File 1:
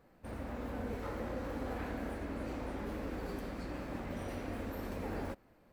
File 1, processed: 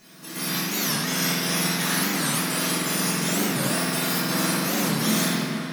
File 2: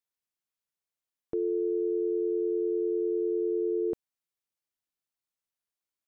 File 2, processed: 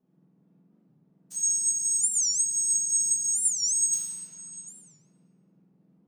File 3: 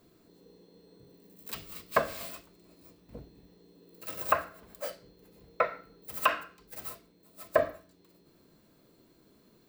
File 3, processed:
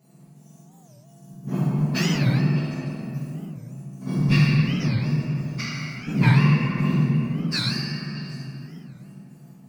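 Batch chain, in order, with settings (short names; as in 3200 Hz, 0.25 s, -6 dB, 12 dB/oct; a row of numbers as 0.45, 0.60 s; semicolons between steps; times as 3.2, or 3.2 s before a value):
spectrum mirrored in octaves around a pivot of 1700 Hz; in parallel at 0 dB: level quantiser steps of 11 dB; on the sum: soft clip -10.5 dBFS; chopper 2.8 Hz, depth 65%, duty 70%; on a send: delay with a stepping band-pass 0.15 s, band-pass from 170 Hz, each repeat 1.4 oct, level -5 dB; on the sum: shoebox room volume 200 m³, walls hard, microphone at 1.4 m; record warp 45 rpm, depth 250 cents; match loudness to -23 LUFS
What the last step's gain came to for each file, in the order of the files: +12.5, +2.0, -4.0 dB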